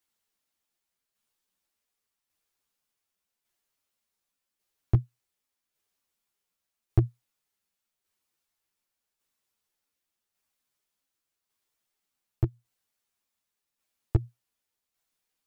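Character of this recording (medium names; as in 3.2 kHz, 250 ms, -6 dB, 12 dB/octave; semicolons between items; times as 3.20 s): tremolo saw down 0.87 Hz, depth 45%; a shimmering, thickened sound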